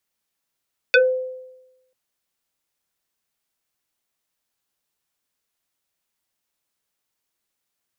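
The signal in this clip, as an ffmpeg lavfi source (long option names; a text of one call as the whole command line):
ffmpeg -f lavfi -i "aevalsrc='0.376*pow(10,-3*t/1)*sin(2*PI*513*t+3.4*pow(10,-3*t/0.19)*sin(2*PI*1.95*513*t))':duration=0.99:sample_rate=44100" out.wav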